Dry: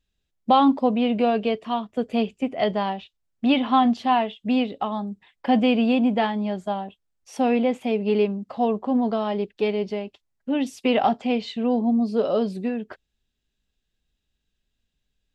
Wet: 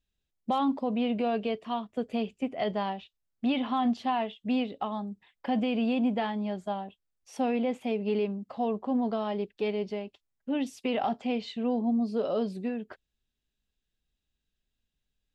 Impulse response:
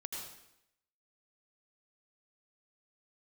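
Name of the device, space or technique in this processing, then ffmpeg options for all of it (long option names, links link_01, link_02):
clipper into limiter: -af "asoftclip=type=hard:threshold=-8.5dB,alimiter=limit=-14dB:level=0:latency=1:release=46,volume=-6dB"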